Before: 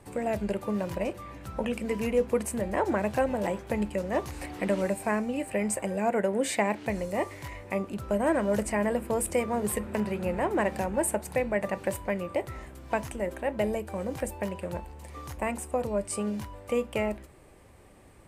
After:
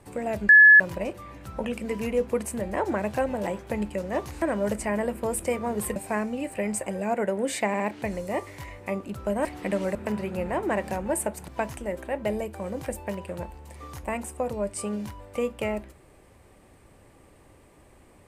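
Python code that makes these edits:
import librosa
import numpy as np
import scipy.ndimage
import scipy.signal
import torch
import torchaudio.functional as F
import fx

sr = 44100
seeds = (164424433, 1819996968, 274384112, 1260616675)

y = fx.edit(x, sr, fx.bleep(start_s=0.49, length_s=0.31, hz=1710.0, db=-9.0),
    fx.swap(start_s=4.42, length_s=0.5, other_s=8.29, other_length_s=1.54),
    fx.stutter(start_s=6.64, slice_s=0.06, count=3),
    fx.cut(start_s=11.36, length_s=1.46), tone=tone)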